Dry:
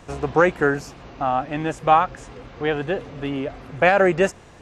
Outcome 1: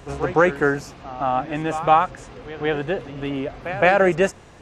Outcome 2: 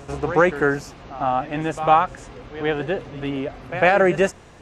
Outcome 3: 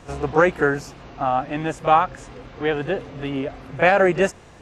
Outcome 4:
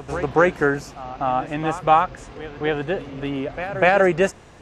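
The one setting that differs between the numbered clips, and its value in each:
echo ahead of the sound, delay time: 165, 101, 30, 246 milliseconds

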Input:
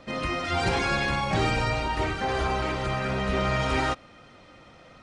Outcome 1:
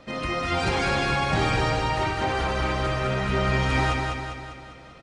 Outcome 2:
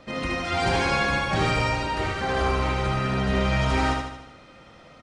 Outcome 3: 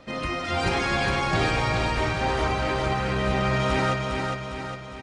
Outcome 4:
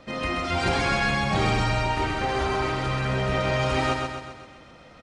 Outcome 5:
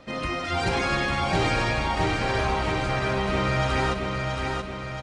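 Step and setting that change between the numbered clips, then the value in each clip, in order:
repeating echo, delay time: 200, 76, 407, 130, 676 milliseconds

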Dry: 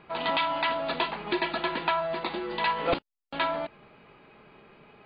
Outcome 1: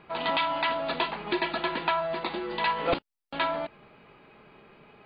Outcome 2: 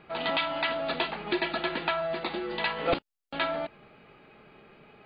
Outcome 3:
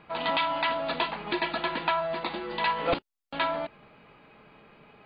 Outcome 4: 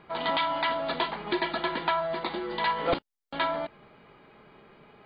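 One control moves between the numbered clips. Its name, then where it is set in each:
notch filter, centre frequency: 6,800, 1,000, 380, 2,600 Hertz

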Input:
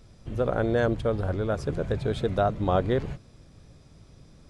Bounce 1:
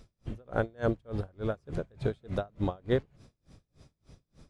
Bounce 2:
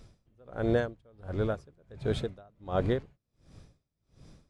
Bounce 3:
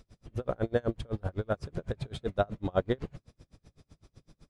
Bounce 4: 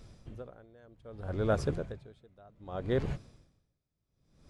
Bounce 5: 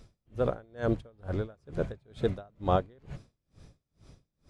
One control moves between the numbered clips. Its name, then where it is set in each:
tremolo with a sine in dB, speed: 3.4, 1.4, 7.9, 0.64, 2.2 Hertz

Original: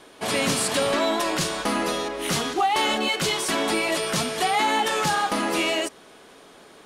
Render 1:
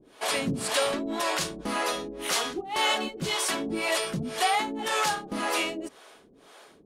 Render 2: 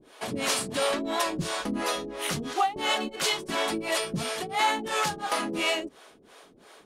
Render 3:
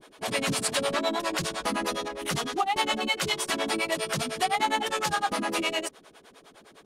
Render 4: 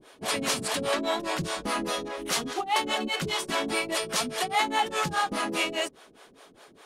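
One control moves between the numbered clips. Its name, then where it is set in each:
two-band tremolo in antiphase, speed: 1.9, 2.9, 9.8, 4.9 Hertz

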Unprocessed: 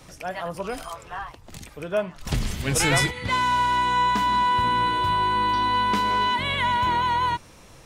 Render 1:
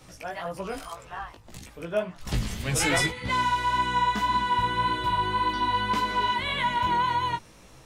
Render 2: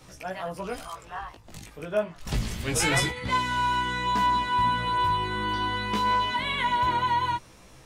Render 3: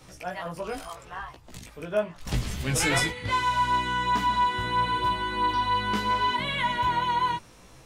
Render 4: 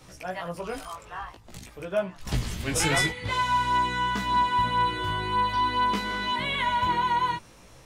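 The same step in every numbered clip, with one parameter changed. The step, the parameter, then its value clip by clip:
chorus effect, speed: 1.8, 0.27, 0.76, 0.49 Hertz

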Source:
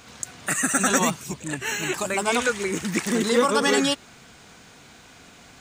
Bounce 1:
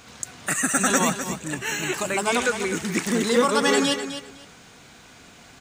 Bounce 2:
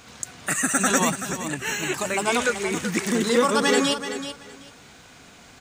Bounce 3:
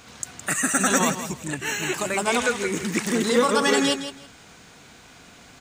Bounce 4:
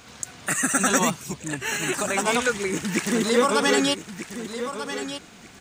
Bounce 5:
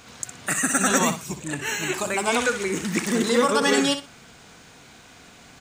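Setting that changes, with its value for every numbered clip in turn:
repeating echo, delay time: 255, 380, 163, 1,240, 61 milliseconds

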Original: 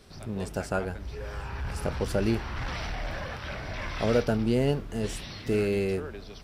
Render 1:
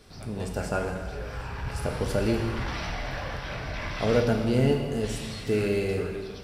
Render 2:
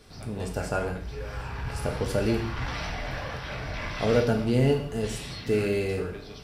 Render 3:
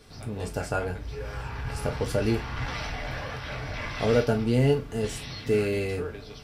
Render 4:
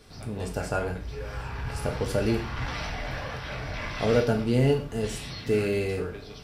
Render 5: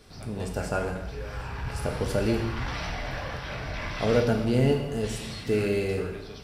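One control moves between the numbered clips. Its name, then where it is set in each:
reverb whose tail is shaped and stops, gate: 530, 220, 80, 150, 350 milliseconds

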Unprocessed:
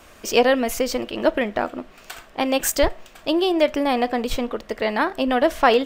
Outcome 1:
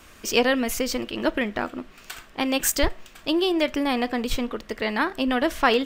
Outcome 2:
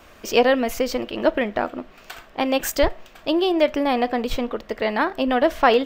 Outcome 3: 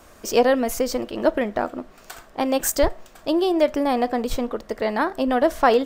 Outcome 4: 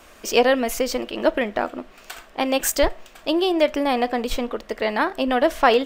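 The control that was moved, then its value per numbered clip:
parametric band, centre frequency: 640, 9,300, 2,700, 110 Hertz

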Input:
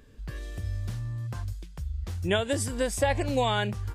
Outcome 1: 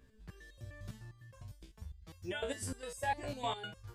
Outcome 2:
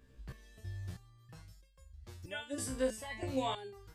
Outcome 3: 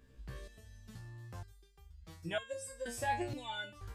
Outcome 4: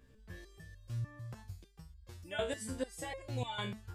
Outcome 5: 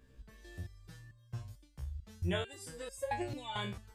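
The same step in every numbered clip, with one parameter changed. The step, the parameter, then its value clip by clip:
step-sequenced resonator, speed: 9.9, 3.1, 2.1, 6.7, 4.5 Hertz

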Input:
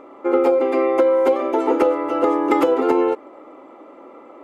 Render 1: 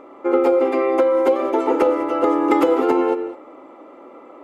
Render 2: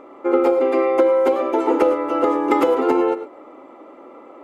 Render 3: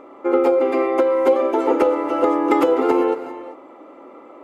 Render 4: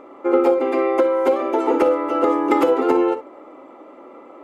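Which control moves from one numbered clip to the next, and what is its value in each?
reverb whose tail is shaped and stops, gate: 230, 130, 420, 80 milliseconds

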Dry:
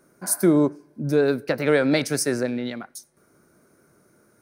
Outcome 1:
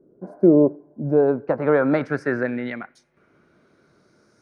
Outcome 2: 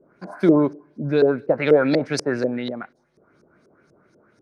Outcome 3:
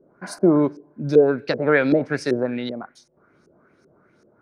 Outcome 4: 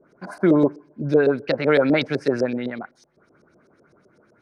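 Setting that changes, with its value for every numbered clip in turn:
auto-filter low-pass, speed: 0.22, 4.1, 2.6, 7.9 Hertz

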